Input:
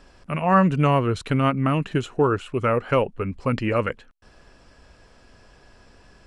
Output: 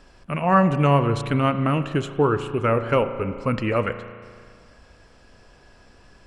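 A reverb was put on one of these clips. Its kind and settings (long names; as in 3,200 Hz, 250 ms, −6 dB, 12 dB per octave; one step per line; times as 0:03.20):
spring reverb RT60 2 s, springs 35 ms, chirp 70 ms, DRR 10 dB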